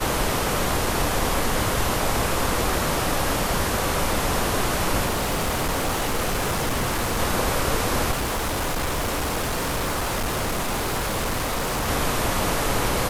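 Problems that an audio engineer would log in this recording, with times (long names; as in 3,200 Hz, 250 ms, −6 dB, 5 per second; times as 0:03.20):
0:05.05–0:07.20: clipping −20 dBFS
0:08.11–0:11.89: clipping −22 dBFS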